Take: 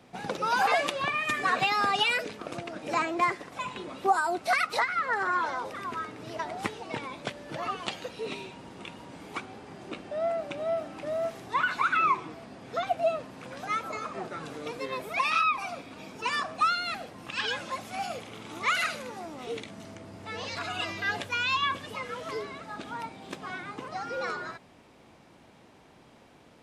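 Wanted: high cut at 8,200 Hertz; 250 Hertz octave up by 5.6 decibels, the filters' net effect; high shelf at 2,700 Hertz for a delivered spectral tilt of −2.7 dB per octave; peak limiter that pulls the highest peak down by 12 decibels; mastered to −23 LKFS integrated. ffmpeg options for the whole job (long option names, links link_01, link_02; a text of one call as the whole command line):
ffmpeg -i in.wav -af "lowpass=8200,equalizer=frequency=250:width_type=o:gain=7.5,highshelf=frequency=2700:gain=-6,volume=11dB,alimiter=limit=-12.5dB:level=0:latency=1" out.wav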